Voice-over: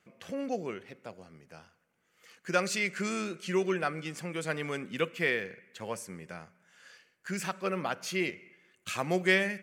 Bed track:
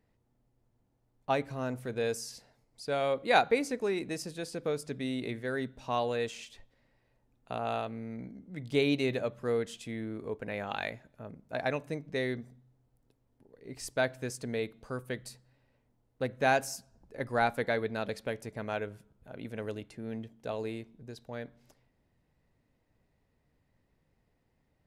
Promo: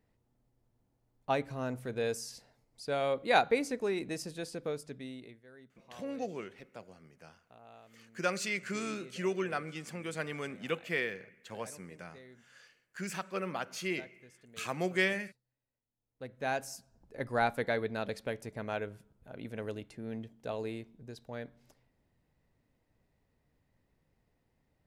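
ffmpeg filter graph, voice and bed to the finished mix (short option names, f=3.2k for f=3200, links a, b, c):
-filter_complex "[0:a]adelay=5700,volume=-4dB[a];[1:a]volume=19dB,afade=t=out:st=4.42:d=0.98:silence=0.0944061,afade=t=in:st=15.92:d=1.3:silence=0.0944061[b];[a][b]amix=inputs=2:normalize=0"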